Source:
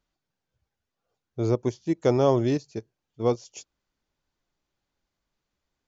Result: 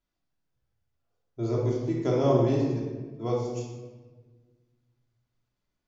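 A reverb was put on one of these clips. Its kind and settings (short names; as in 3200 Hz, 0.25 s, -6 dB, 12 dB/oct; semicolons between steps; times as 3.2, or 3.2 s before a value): shoebox room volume 1100 m³, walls mixed, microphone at 3 m; gain -9 dB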